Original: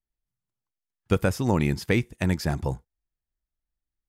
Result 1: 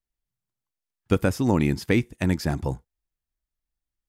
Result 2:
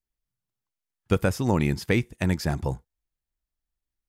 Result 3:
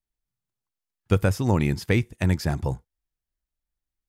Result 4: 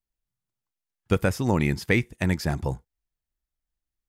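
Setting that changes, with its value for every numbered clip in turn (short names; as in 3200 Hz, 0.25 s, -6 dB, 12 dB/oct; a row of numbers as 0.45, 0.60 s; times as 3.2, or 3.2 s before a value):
dynamic EQ, frequency: 280, 6800, 100, 2000 Hz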